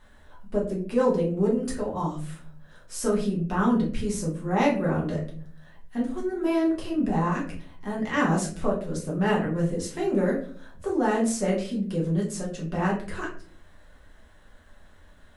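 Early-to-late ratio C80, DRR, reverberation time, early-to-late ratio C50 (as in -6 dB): 12.0 dB, -4.5 dB, 0.50 s, 7.5 dB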